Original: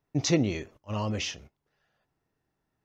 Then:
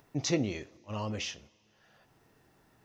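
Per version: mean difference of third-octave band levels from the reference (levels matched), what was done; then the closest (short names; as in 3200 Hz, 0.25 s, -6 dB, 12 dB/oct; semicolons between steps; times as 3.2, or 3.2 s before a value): 1.5 dB: low shelf 120 Hz -5.5 dB; upward compressor, threshold -44 dBFS; two-slope reverb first 0.32 s, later 2.8 s, from -20 dB, DRR 16 dB; gain -4 dB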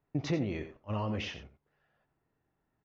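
4.5 dB: LPF 2500 Hz 12 dB/oct; compressor 3:1, threshold -30 dBFS, peak gain reduction 9 dB; echo 88 ms -11.5 dB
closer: first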